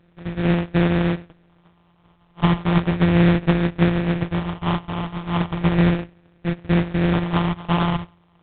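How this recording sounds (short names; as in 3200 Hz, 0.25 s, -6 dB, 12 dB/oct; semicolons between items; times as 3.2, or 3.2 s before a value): a buzz of ramps at a fixed pitch in blocks of 256 samples; phasing stages 6, 0.35 Hz, lowest notch 460–1200 Hz; aliases and images of a low sample rate 2100 Hz, jitter 20%; A-law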